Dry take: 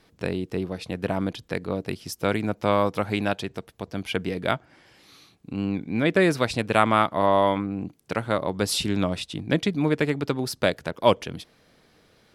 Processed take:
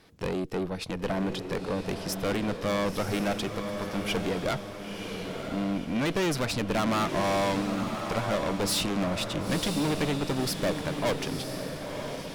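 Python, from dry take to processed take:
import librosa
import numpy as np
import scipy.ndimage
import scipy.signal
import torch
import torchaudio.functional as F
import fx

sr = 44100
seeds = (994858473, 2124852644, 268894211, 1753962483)

y = fx.tube_stage(x, sr, drive_db=29.0, bias=0.6)
y = fx.echo_diffused(y, sr, ms=993, feedback_pct=45, wet_db=-6)
y = y * librosa.db_to_amplitude(4.5)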